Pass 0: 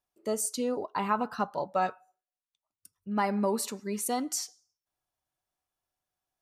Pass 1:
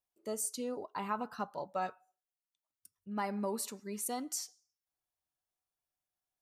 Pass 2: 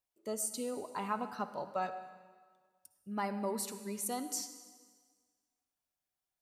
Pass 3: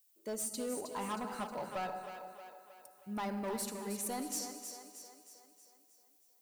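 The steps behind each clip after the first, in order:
treble shelf 7.4 kHz +5.5 dB; trim -8 dB
reverberation RT60 1.6 s, pre-delay 48 ms, DRR 11 dB
overload inside the chain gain 34 dB; added noise violet -70 dBFS; two-band feedback delay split 310 Hz, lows 112 ms, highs 315 ms, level -8 dB

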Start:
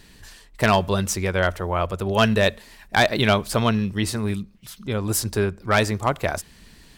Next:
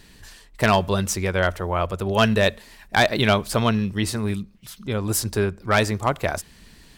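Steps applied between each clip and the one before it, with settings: no audible change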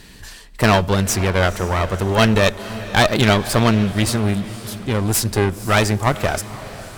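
one-sided clip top -27.5 dBFS; echo that smears into a reverb 503 ms, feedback 47%, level -15 dB; trim +7 dB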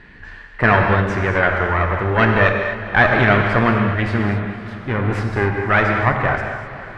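resonant low-pass 1.8 kHz, resonance Q 2.4; gated-style reverb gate 280 ms flat, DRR 2 dB; trim -2.5 dB

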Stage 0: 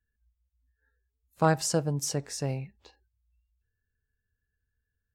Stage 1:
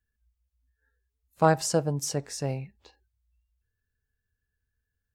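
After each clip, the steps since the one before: dynamic bell 670 Hz, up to +4 dB, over -34 dBFS, Q 0.8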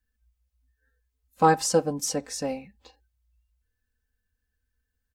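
comb 3.9 ms, depth 94%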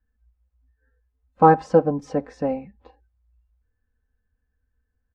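low-pass 1.3 kHz 12 dB/octave; trim +6 dB

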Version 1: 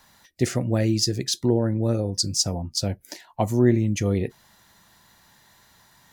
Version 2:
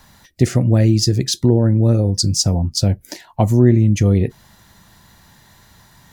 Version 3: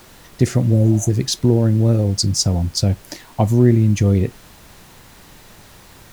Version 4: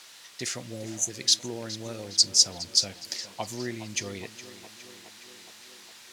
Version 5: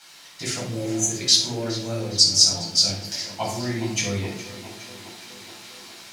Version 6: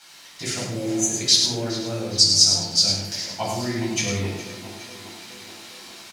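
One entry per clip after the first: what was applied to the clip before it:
bass shelf 230 Hz +10.5 dB; compression 1.5:1, threshold -20 dBFS, peak gain reduction 5 dB; trim +5.5 dB
spectral replace 0.75–1.07 s, 580–5900 Hz before; added noise pink -44 dBFS; trim -1 dB
band-pass filter 4.6 kHz, Q 0.79; tape echo 414 ms, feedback 73%, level -13 dB, low-pass 4.6 kHz; trim +1.5 dB
level rider gain up to 4 dB; simulated room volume 750 m³, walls furnished, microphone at 7.9 m; trim -6 dB
delay 103 ms -6 dB

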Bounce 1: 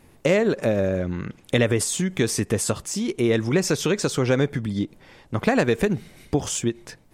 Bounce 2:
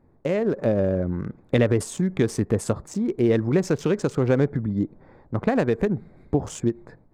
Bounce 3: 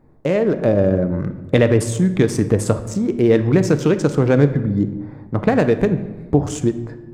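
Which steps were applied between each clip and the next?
local Wiener filter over 15 samples; treble shelf 2 kHz -10 dB; level rider gain up to 7.5 dB; trim -5 dB
simulated room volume 670 m³, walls mixed, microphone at 0.5 m; trim +5.5 dB

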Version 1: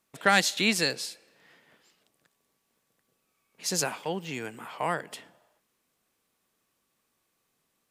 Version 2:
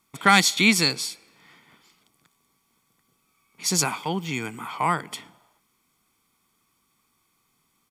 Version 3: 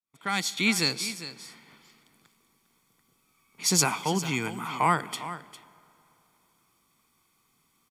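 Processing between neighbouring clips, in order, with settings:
comb 0.9 ms, depth 64%; trim +5 dB
fade-in on the opening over 1.38 s; delay 403 ms -13.5 dB; reverberation RT60 3.3 s, pre-delay 50 ms, DRR 22.5 dB

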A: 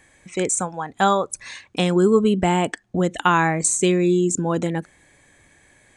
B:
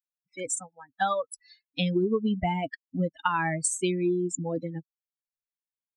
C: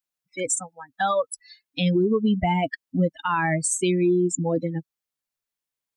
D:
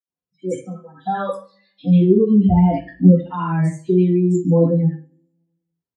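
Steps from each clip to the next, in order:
expander on every frequency bin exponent 3; peaking EQ 6.4 kHz -7.5 dB 0.29 oct; compression, threshold -22 dBFS, peak gain reduction 8 dB
peak limiter -21 dBFS, peak gain reduction 10 dB; trim +7 dB
rotary cabinet horn 0.6 Hz; three bands offset in time highs, lows, mids 60/140 ms, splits 1.1/3.9 kHz; reverberation RT60 0.40 s, pre-delay 3 ms, DRR -11.5 dB; trim -17.5 dB

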